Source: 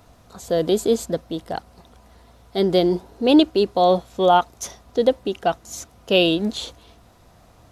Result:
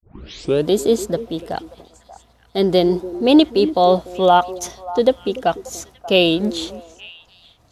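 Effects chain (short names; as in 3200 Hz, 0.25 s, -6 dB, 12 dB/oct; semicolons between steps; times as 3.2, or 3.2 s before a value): tape start at the beginning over 0.66 s; expander -43 dBFS; on a send: delay with a stepping band-pass 0.292 s, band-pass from 330 Hz, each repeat 1.4 oct, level -11.5 dB; on the sum: gain +2.5 dB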